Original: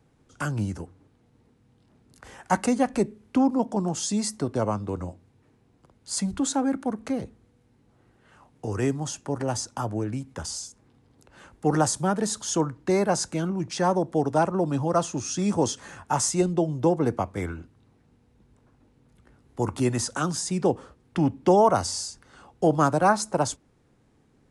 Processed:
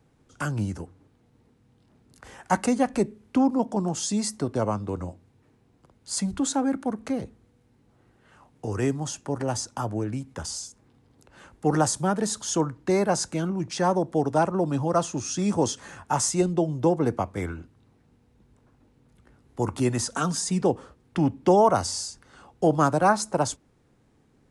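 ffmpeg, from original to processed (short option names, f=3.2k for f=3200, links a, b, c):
-filter_complex "[0:a]asettb=1/sr,asplit=3[a][b][c];[a]atrim=end=20.114[d];[b]atrim=start=20.11:end=20.62,asetpts=PTS-STARTPTS,afade=t=in:d=0.004:c=qsin,afade=t=out:st=0.506:d=0.004:c=qsin,aecho=1:1:4.4:0.62,atrim=end_sample=22491[e];[c]atrim=start=20.616[f];[d][e]acrossfade=d=0.004:c1=hsin:c2=qsin[g];[g][f]acrossfade=d=0.004:c1=qsin:c2=hsin"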